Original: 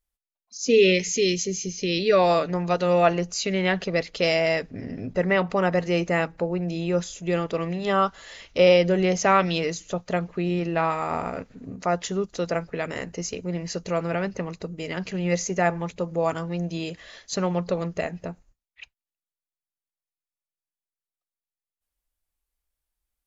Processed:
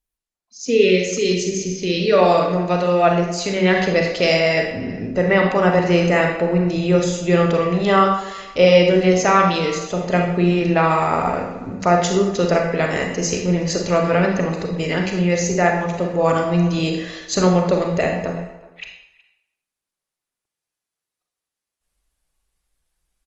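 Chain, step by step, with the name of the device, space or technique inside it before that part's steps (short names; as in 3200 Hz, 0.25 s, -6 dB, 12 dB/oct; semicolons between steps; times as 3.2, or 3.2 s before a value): speakerphone in a meeting room (reverb RT60 0.75 s, pre-delay 32 ms, DRR 2 dB; speakerphone echo 0.37 s, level -20 dB; AGC gain up to 10 dB; gain -1 dB; Opus 32 kbps 48000 Hz)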